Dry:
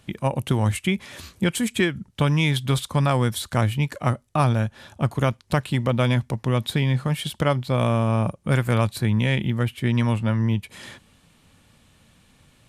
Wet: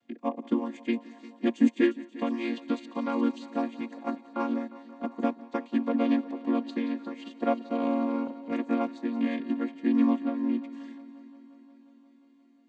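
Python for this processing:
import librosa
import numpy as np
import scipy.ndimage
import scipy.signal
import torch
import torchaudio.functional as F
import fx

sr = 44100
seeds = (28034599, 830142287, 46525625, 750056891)

p1 = fx.chord_vocoder(x, sr, chord='minor triad', root=58)
p2 = p1 + fx.echo_heads(p1, sr, ms=177, heads='first and second', feedback_pct=72, wet_db=-16, dry=0)
p3 = fx.upward_expand(p2, sr, threshold_db=-35.0, expansion=1.5)
y = p3 * librosa.db_to_amplitude(-2.5)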